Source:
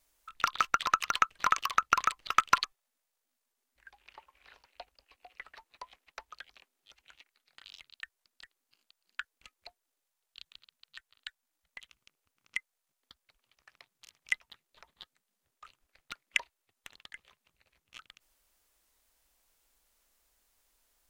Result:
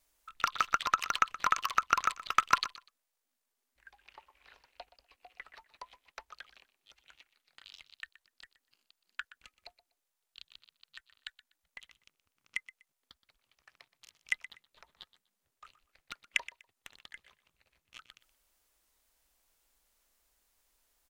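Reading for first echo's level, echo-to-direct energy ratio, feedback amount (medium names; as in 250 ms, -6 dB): -16.5 dB, -16.5 dB, 22%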